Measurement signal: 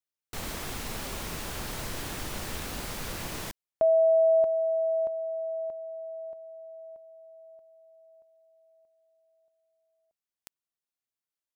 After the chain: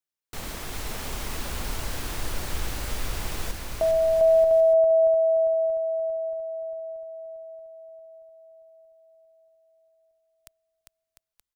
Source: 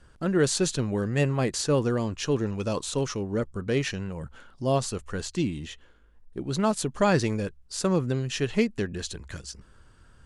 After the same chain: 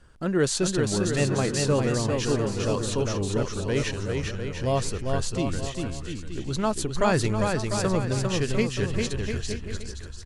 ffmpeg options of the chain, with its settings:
-af "asubboost=boost=4:cutoff=86,aecho=1:1:400|700|925|1094|1220:0.631|0.398|0.251|0.158|0.1"

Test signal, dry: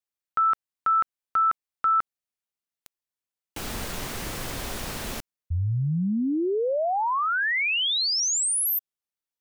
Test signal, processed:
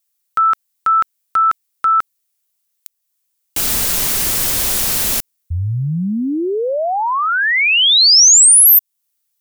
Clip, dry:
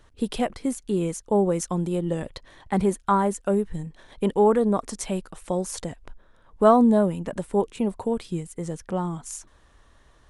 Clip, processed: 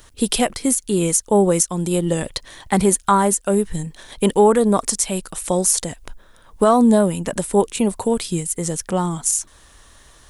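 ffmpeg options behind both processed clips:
-af "crystalizer=i=4:c=0,alimiter=limit=0.299:level=0:latency=1:release=295,volume=2"

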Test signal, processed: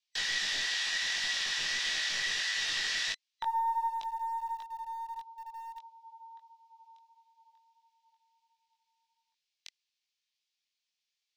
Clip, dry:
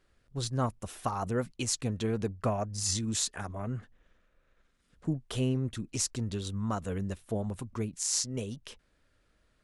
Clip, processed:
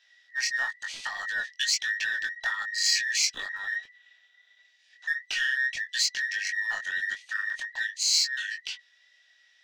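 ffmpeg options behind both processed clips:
-filter_complex "[0:a]afftfilt=real='real(if(between(b,1,1012),(2*floor((b-1)/92)+1)*92-b,b),0)':imag='imag(if(between(b,1,1012),(2*floor((b-1)/92)+1)*92-b,b),0)*if(between(b,1,1012),-1,1)':win_size=2048:overlap=0.75,lowpass=f=5500:w=0.5412,lowpass=f=5500:w=1.3066,highshelf=f=3200:g=-4.5,bandreject=f=2000:w=22,asplit=2[s0][s1];[s1]acompressor=threshold=0.0112:ratio=6,volume=1[s2];[s0][s2]amix=inputs=2:normalize=0,aexciter=amount=3.7:drive=9.7:freq=2000,flanger=delay=19:depth=3.2:speed=1.5,acrossover=split=590|830[s3][s4][s5];[s3]acrusher=bits=6:dc=4:mix=0:aa=0.000001[s6];[s6][s4][s5]amix=inputs=3:normalize=0,volume=0.596"

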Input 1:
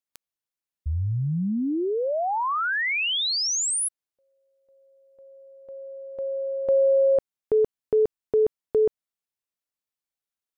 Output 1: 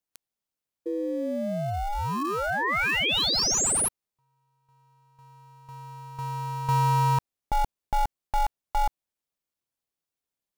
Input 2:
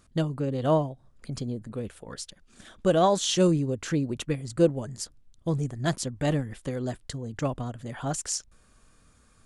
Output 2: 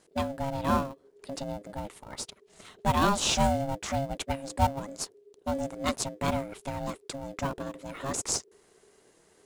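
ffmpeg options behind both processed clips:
-filter_complex "[0:a]tiltshelf=f=870:g=-3.5,asplit=2[s0][s1];[s1]acrusher=samples=31:mix=1:aa=0.000001,volume=0.355[s2];[s0][s2]amix=inputs=2:normalize=0,aeval=exprs='val(0)*sin(2*PI*410*n/s)':c=same"

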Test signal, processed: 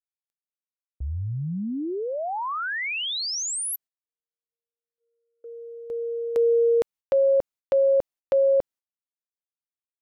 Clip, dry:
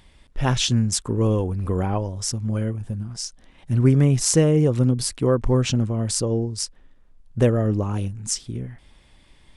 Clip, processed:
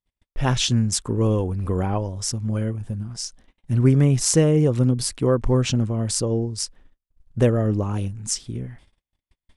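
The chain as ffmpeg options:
-af "agate=range=0.00891:threshold=0.00501:ratio=16:detection=peak"

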